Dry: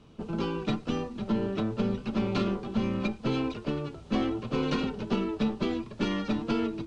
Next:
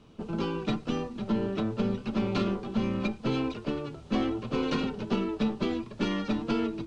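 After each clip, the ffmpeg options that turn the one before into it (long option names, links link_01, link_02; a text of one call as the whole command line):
ffmpeg -i in.wav -af "bandreject=frequency=50:width_type=h:width=6,bandreject=frequency=100:width_type=h:width=6,bandreject=frequency=150:width_type=h:width=6" out.wav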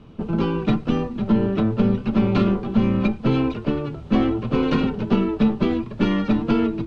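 ffmpeg -i in.wav -af "bass=frequency=250:gain=5,treble=frequency=4000:gain=-11,volume=7dB" out.wav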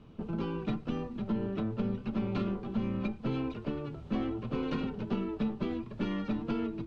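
ffmpeg -i in.wav -af "acompressor=threshold=-29dB:ratio=1.5,volume=-8.5dB" out.wav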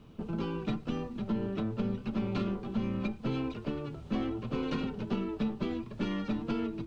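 ffmpeg -i in.wav -af "crystalizer=i=1.5:c=0" out.wav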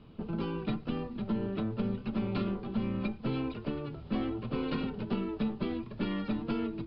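ffmpeg -i in.wav -af "aresample=11025,aresample=44100" out.wav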